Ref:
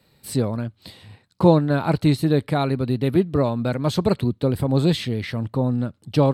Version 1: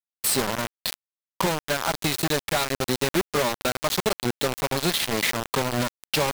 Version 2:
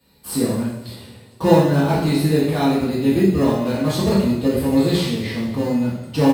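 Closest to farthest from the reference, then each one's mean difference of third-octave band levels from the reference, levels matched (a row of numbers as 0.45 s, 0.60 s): 2, 1; 9.0 dB, 15.0 dB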